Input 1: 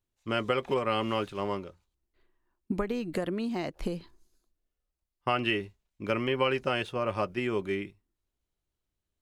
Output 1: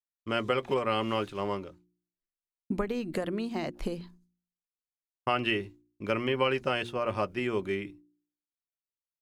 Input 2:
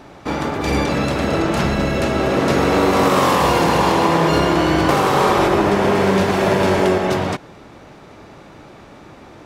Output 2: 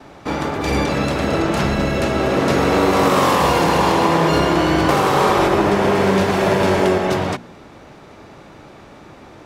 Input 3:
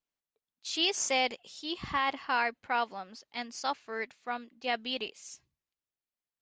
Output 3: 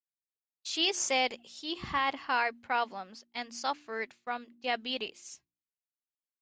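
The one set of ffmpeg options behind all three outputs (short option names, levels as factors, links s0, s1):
-af "agate=range=0.0224:threshold=0.00398:ratio=3:detection=peak,bandreject=f=59.07:t=h:w=4,bandreject=f=118.14:t=h:w=4,bandreject=f=177.21:t=h:w=4,bandreject=f=236.28:t=h:w=4,bandreject=f=295.35:t=h:w=4,bandreject=f=354.42:t=h:w=4"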